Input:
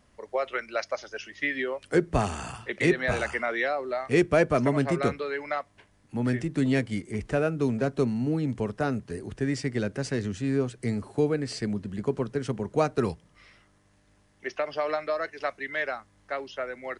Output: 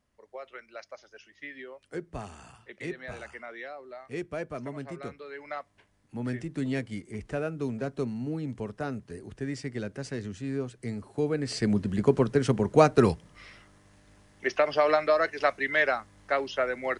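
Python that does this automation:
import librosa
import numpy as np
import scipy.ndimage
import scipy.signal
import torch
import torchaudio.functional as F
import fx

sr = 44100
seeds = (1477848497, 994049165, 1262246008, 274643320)

y = fx.gain(x, sr, db=fx.line((5.13, -13.5), (5.58, -6.0), (11.1, -6.0), (11.76, 5.5)))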